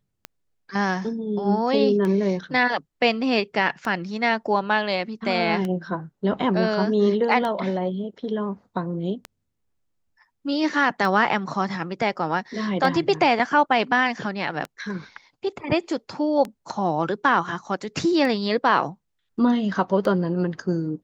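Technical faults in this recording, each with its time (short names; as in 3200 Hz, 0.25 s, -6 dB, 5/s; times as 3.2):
tick 33 1/3 rpm -16 dBFS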